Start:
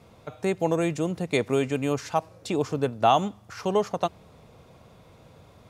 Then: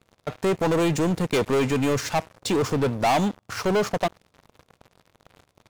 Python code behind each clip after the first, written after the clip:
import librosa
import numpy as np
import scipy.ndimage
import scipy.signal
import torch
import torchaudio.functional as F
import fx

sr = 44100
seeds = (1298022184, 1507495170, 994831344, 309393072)

y = fx.leveller(x, sr, passes=5)
y = y * librosa.db_to_amplitude(-9.0)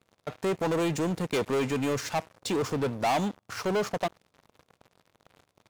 y = fx.low_shelf(x, sr, hz=72.0, db=-9.0)
y = y * librosa.db_to_amplitude(-5.0)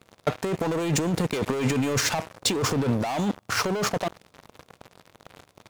y = fx.over_compress(x, sr, threshold_db=-32.0, ratio=-1.0)
y = y * librosa.db_to_amplitude(7.5)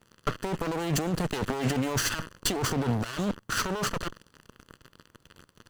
y = fx.lower_of_two(x, sr, delay_ms=0.65)
y = y * librosa.db_to_amplitude(-2.0)